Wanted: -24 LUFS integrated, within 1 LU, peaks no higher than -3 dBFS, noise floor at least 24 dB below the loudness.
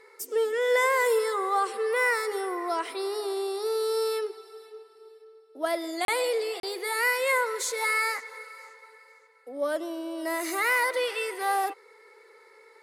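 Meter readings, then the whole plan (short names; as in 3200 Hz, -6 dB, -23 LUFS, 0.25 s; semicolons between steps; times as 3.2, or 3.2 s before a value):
dropouts 2; longest dropout 32 ms; loudness -27.5 LUFS; peak -13.0 dBFS; loudness target -24.0 LUFS
-> interpolate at 6.05/6.6, 32 ms; gain +3.5 dB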